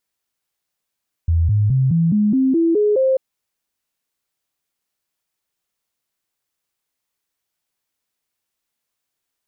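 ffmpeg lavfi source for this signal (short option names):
-f lavfi -i "aevalsrc='0.237*clip(min(mod(t,0.21),0.21-mod(t,0.21))/0.005,0,1)*sin(2*PI*83*pow(2,floor(t/0.21)/3)*mod(t,0.21))':d=1.89:s=44100"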